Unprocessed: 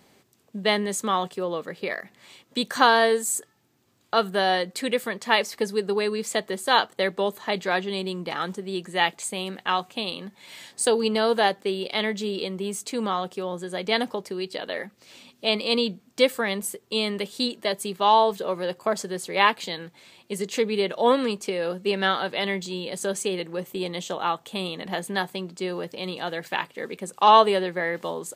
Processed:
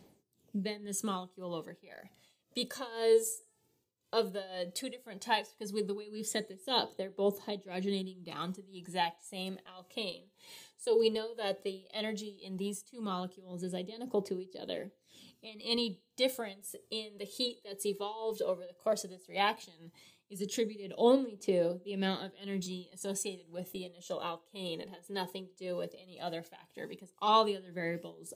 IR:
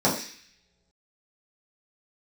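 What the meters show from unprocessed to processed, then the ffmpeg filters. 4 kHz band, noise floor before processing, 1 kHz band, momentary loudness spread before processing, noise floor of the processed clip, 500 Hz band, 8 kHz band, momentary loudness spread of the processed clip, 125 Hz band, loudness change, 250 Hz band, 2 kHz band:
-11.0 dB, -62 dBFS, -14.0 dB, 11 LU, -74 dBFS, -9.0 dB, -9.5 dB, 15 LU, -7.0 dB, -10.5 dB, -8.5 dB, -16.5 dB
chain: -filter_complex "[0:a]equalizer=f=1.4k:w=0.64:g=-11.5,aphaser=in_gain=1:out_gain=1:delay=2.3:decay=0.51:speed=0.14:type=triangular,tremolo=f=1.9:d=0.91,asplit=2[a][b];[1:a]atrim=start_sample=2205,asetrate=70560,aresample=44100[c];[b][c]afir=irnorm=-1:irlink=0,volume=-26.5dB[d];[a][d]amix=inputs=2:normalize=0,volume=-4.5dB"

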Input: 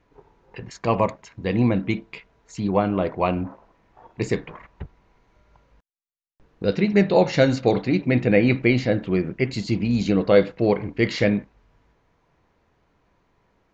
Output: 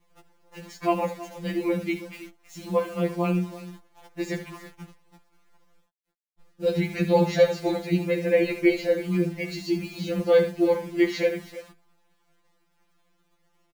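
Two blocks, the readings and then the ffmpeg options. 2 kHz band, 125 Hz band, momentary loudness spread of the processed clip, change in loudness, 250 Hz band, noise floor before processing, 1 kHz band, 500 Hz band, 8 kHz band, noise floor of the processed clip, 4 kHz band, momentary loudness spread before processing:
-4.5 dB, -6.5 dB, 21 LU, -3.5 dB, -5.0 dB, -67 dBFS, -4.5 dB, -2.0 dB, n/a, -69 dBFS, -3.5 dB, 12 LU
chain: -af "aecho=1:1:73|326:0.282|0.158,acrusher=bits=8:dc=4:mix=0:aa=0.000001,afftfilt=real='re*2.83*eq(mod(b,8),0)':imag='im*2.83*eq(mod(b,8),0)':win_size=2048:overlap=0.75,volume=-1.5dB"

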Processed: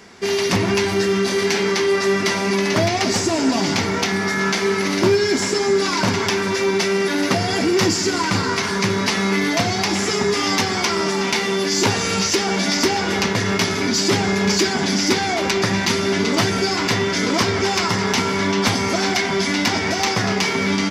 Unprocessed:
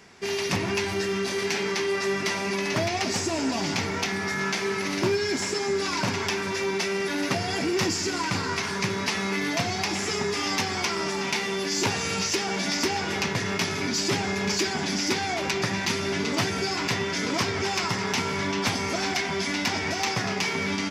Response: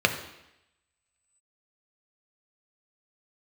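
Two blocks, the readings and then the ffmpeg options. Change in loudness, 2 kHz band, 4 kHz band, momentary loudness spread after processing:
+7.5 dB, +6.5 dB, +7.0 dB, 2 LU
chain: -filter_complex "[0:a]asplit=2[a][b];[1:a]atrim=start_sample=2205,lowshelf=f=350:g=10[c];[b][c]afir=irnorm=-1:irlink=0,volume=-28.5dB[d];[a][d]amix=inputs=2:normalize=0,volume=6.5dB"

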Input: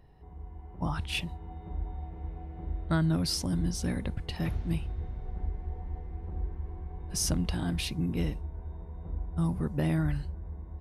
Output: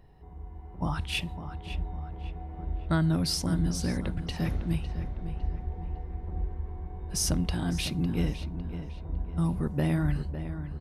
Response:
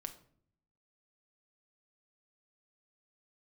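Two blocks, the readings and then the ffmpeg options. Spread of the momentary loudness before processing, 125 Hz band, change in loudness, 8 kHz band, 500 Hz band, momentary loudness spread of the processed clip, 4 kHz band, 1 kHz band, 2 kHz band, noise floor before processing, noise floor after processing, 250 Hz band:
13 LU, +2.0 dB, +1.5 dB, +1.5 dB, +2.0 dB, 12 LU, +1.5 dB, +2.0 dB, +1.5 dB, -46 dBFS, -44 dBFS, +2.0 dB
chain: -filter_complex "[0:a]asplit=2[a][b];[b]adelay=555,lowpass=f=3.3k:p=1,volume=-10.5dB,asplit=2[c][d];[d]adelay=555,lowpass=f=3.3k:p=1,volume=0.42,asplit=2[e][f];[f]adelay=555,lowpass=f=3.3k:p=1,volume=0.42,asplit=2[g][h];[h]adelay=555,lowpass=f=3.3k:p=1,volume=0.42[i];[a][c][e][g][i]amix=inputs=5:normalize=0,asplit=2[j][k];[1:a]atrim=start_sample=2205[l];[k][l]afir=irnorm=-1:irlink=0,volume=-11.5dB[m];[j][m]amix=inputs=2:normalize=0"

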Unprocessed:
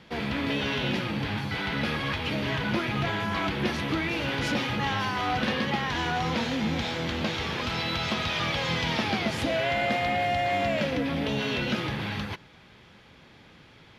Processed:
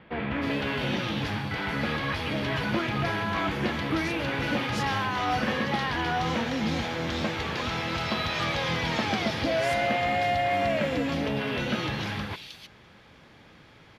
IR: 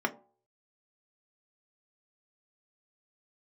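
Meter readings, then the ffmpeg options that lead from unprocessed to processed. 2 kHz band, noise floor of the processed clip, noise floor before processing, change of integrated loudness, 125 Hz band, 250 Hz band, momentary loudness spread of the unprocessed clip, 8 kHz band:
0.0 dB, -53 dBFS, -54 dBFS, 0.0 dB, -0.5 dB, 0.0 dB, 4 LU, -0.5 dB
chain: -filter_complex "[0:a]acrossover=split=3000[a][b];[b]adelay=310[c];[a][c]amix=inputs=2:normalize=0,asplit=2[d][e];[1:a]atrim=start_sample=2205,asetrate=66150,aresample=44100[f];[e][f]afir=irnorm=-1:irlink=0,volume=-19.5dB[g];[d][g]amix=inputs=2:normalize=0"

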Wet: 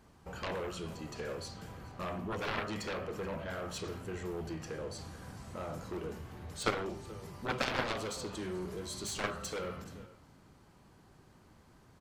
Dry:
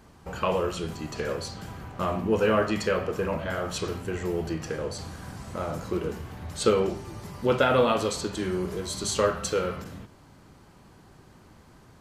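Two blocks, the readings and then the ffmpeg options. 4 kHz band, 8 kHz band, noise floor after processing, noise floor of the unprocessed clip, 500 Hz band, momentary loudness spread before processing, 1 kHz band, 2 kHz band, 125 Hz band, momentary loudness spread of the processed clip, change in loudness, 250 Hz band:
-7.5 dB, -9.0 dB, -61 dBFS, -54 dBFS, -13.5 dB, 15 LU, -10.0 dB, -6.5 dB, -9.5 dB, 12 LU, -11.5 dB, -11.0 dB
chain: -af "aecho=1:1:429:0.0944,aeval=exprs='0.355*(cos(1*acos(clip(val(0)/0.355,-1,1)))-cos(1*PI/2))+0.141*(cos(3*acos(clip(val(0)/0.355,-1,1)))-cos(3*PI/2))+0.0251*(cos(7*acos(clip(val(0)/0.355,-1,1)))-cos(7*PI/2))':c=same,volume=-4.5dB"

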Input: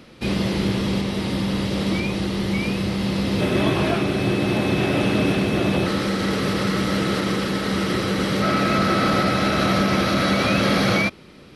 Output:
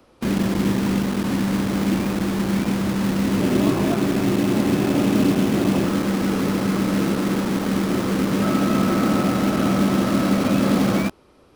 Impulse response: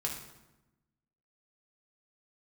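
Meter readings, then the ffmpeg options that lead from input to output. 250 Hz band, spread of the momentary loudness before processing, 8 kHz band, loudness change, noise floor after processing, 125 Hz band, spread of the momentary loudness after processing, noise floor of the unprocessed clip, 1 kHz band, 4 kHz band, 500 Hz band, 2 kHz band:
+3.0 dB, 5 LU, +2.0 dB, +0.5 dB, -53 dBFS, 0.0 dB, 3 LU, -45 dBFS, -2.5 dB, -6.0 dB, -1.0 dB, -5.0 dB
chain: -filter_complex "[0:a]equalizer=f=250:t=o:w=1:g=11,equalizer=f=1k:t=o:w=1:g=4,equalizer=f=2k:t=o:w=1:g=-8,equalizer=f=4k:t=o:w=1:g=-7,acrossover=split=110|390|2100[a][b][c][d];[b]acrusher=bits=3:mix=0:aa=0.000001[e];[a][e][c][d]amix=inputs=4:normalize=0,volume=-5dB"

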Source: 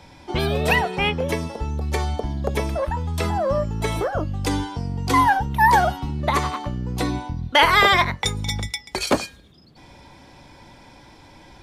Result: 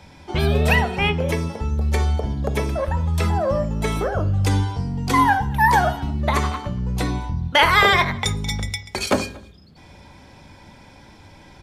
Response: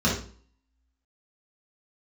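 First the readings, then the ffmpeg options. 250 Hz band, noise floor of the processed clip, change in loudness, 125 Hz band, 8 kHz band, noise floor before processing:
+1.5 dB, -47 dBFS, +1.0 dB, +4.5 dB, 0.0 dB, -48 dBFS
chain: -filter_complex "[0:a]asplit=2[a][b];[b]adelay=233.2,volume=-24dB,highshelf=f=4k:g=-5.25[c];[a][c]amix=inputs=2:normalize=0,asplit=2[d][e];[1:a]atrim=start_sample=2205,lowpass=5.6k[f];[e][f]afir=irnorm=-1:irlink=0,volume=-24dB[g];[d][g]amix=inputs=2:normalize=0"

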